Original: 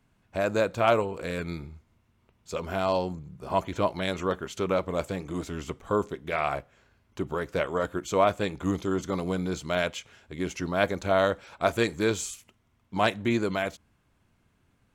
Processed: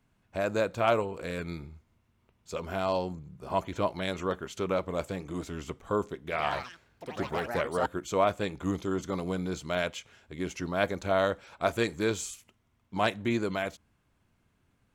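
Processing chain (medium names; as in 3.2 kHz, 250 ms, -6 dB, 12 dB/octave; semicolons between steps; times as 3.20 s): 6.18–8.24 s: ever faster or slower copies 137 ms, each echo +5 st, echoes 3, each echo -6 dB; trim -3 dB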